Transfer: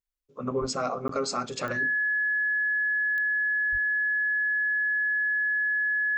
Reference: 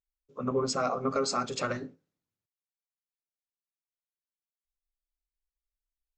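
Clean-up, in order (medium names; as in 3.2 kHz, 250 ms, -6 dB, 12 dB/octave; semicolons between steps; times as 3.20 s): de-click; band-stop 1.7 kHz, Q 30; 0.60–0.72 s: high-pass 140 Hz 24 dB/octave; 3.71–3.83 s: high-pass 140 Hz 24 dB/octave; interpolate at 1.08 s, 13 ms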